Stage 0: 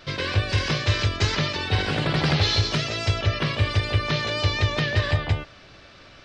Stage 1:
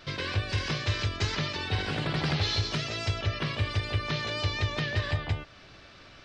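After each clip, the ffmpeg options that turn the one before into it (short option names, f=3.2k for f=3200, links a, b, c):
-filter_complex "[0:a]equalizer=f=540:w=3.8:g=-2.5,asplit=2[a][b];[b]acompressor=threshold=-31dB:ratio=6,volume=-1dB[c];[a][c]amix=inputs=2:normalize=0,volume=-8.5dB"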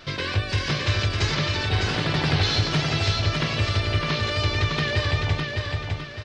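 -af "aecho=1:1:607|1214|1821|2428|3035:0.631|0.24|0.0911|0.0346|0.0132,volume=5dB"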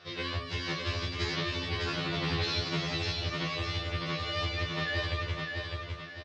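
-filter_complex "[0:a]highpass=100,lowpass=5.7k,asplit=2[a][b];[b]adelay=26,volume=-6.5dB[c];[a][c]amix=inputs=2:normalize=0,afftfilt=real='re*2*eq(mod(b,4),0)':imag='im*2*eq(mod(b,4),0)':win_size=2048:overlap=0.75,volume=-5.5dB"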